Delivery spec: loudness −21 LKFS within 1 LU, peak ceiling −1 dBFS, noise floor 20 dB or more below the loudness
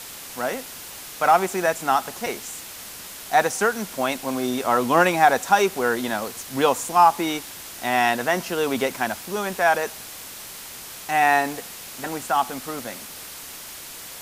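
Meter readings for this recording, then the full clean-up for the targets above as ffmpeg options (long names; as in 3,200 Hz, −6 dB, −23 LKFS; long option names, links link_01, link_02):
background noise floor −39 dBFS; target noise floor −42 dBFS; integrated loudness −22.0 LKFS; sample peak −2.5 dBFS; target loudness −21.0 LKFS
→ -af "afftdn=noise_reduction=6:noise_floor=-39"
-af "volume=1dB"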